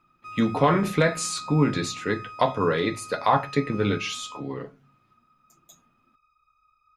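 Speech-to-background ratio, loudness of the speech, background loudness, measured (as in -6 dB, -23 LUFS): 15.0 dB, -25.0 LUFS, -40.0 LUFS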